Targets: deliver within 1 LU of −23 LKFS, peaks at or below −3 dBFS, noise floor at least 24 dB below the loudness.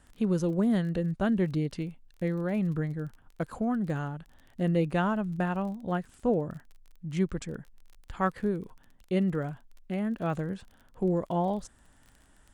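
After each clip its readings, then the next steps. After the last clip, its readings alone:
crackle rate 29 per second; integrated loudness −30.5 LKFS; sample peak −14.0 dBFS; target loudness −23.0 LKFS
→ click removal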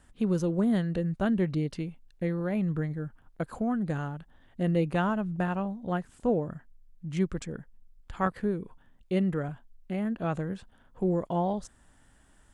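crackle rate 0.16 per second; integrated loudness −30.5 LKFS; sample peak −14.0 dBFS; target loudness −23.0 LKFS
→ level +7.5 dB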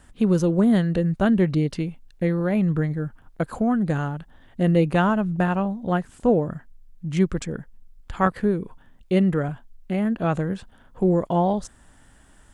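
integrated loudness −23.0 LKFS; sample peak −6.5 dBFS; background noise floor −53 dBFS

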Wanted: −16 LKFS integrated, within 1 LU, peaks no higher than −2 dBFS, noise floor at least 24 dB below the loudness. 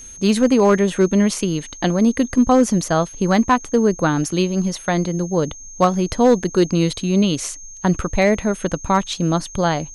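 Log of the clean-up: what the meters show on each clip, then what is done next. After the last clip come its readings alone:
share of clipped samples 0.6%; peaks flattened at −6.5 dBFS; interfering tone 6,400 Hz; level of the tone −36 dBFS; integrated loudness −18.5 LKFS; sample peak −6.5 dBFS; target loudness −16.0 LKFS
→ clipped peaks rebuilt −6.5 dBFS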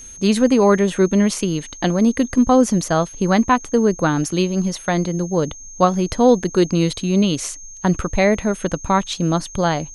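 share of clipped samples 0.0%; interfering tone 6,400 Hz; level of the tone −36 dBFS
→ notch filter 6,400 Hz, Q 30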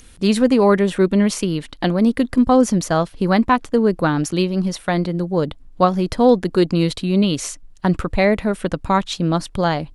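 interfering tone none found; integrated loudness −18.5 LKFS; sample peak −2.0 dBFS; target loudness −16.0 LKFS
→ level +2.5 dB
brickwall limiter −2 dBFS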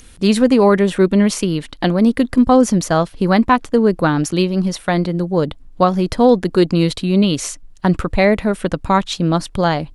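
integrated loudness −16.0 LKFS; sample peak −2.0 dBFS; background noise floor −42 dBFS

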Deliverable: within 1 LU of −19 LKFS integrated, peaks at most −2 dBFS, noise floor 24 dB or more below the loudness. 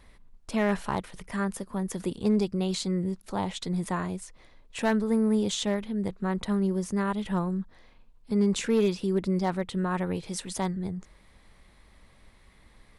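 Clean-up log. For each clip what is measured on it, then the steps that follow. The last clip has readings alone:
share of clipped samples 0.2%; peaks flattened at −17.0 dBFS; integrated loudness −29.0 LKFS; sample peak −17.0 dBFS; target loudness −19.0 LKFS
→ clipped peaks rebuilt −17 dBFS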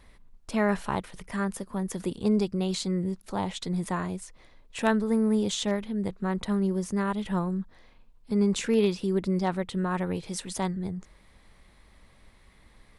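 share of clipped samples 0.0%; integrated loudness −29.0 LKFS; sample peak −8.5 dBFS; target loudness −19.0 LKFS
→ level +10 dB
brickwall limiter −2 dBFS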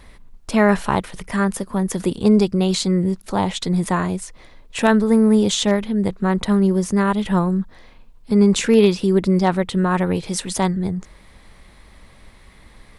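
integrated loudness −19.0 LKFS; sample peak −2.0 dBFS; background noise floor −48 dBFS

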